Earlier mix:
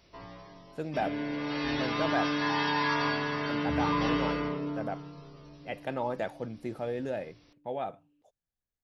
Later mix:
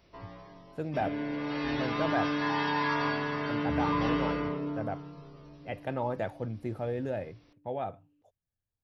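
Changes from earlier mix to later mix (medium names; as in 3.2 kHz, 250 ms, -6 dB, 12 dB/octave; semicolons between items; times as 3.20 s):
speech: add peaking EQ 95 Hz +13 dB 0.67 oct; master: add peaking EQ 6.2 kHz -6 dB 2.2 oct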